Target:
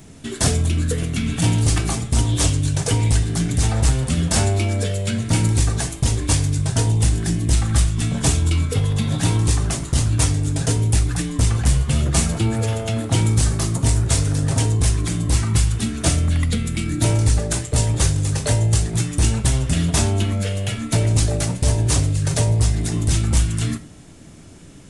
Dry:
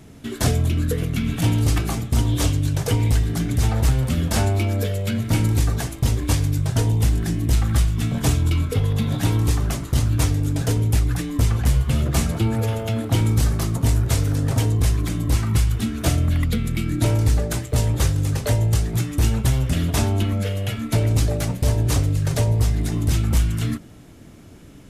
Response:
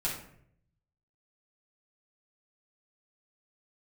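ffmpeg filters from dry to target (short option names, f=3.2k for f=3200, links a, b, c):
-filter_complex "[0:a]aresample=22050,aresample=44100,highshelf=f=6.1k:g=10.5,asplit=2[a][b];[1:a]atrim=start_sample=2205,afade=t=out:st=0.18:d=0.01,atrim=end_sample=8379,highshelf=f=9.1k:g=11.5[c];[b][c]afir=irnorm=-1:irlink=0,volume=-15.5dB[d];[a][d]amix=inputs=2:normalize=0"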